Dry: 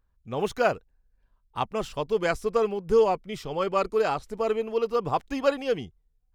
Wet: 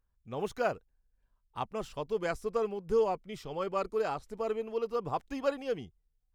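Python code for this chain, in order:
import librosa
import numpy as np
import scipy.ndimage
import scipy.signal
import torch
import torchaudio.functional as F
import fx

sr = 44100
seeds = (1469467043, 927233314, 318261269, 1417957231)

y = fx.dynamic_eq(x, sr, hz=3100.0, q=0.81, threshold_db=-40.0, ratio=4.0, max_db=-3)
y = F.gain(torch.from_numpy(y), -7.0).numpy()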